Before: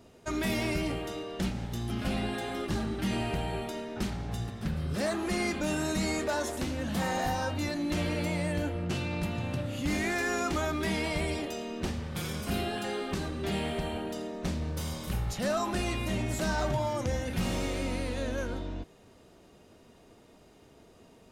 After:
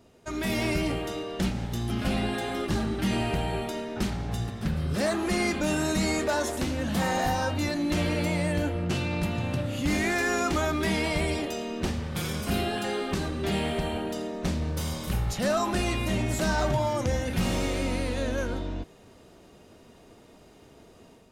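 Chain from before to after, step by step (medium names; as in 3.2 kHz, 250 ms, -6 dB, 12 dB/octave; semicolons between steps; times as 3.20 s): level rider gain up to 6 dB; trim -2 dB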